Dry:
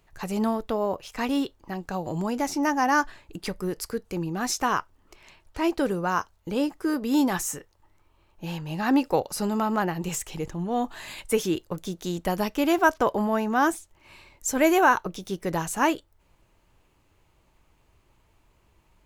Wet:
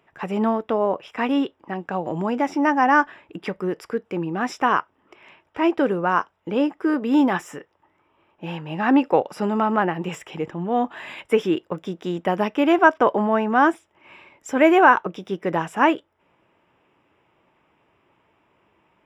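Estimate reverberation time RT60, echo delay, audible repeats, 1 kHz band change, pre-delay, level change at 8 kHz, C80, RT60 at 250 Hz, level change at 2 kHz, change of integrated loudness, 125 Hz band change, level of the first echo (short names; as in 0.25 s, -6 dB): none, none, none, +5.5 dB, none, under -10 dB, none, none, +5.5 dB, +5.0 dB, +1.0 dB, none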